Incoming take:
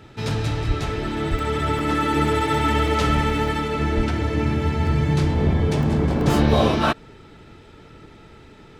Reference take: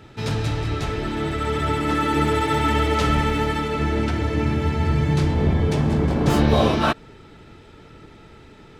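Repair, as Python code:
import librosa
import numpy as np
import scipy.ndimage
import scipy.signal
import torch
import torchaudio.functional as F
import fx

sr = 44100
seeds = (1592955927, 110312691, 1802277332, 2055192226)

y = fx.highpass(x, sr, hz=140.0, slope=24, at=(0.67, 0.79), fade=0.02)
y = fx.highpass(y, sr, hz=140.0, slope=24, at=(1.3, 1.42), fade=0.02)
y = fx.highpass(y, sr, hz=140.0, slope=24, at=(3.96, 4.08), fade=0.02)
y = fx.fix_interpolate(y, sr, at_s=(1.39, 1.79, 2.88, 3.48, 4.87, 5.83, 6.21), length_ms=1.6)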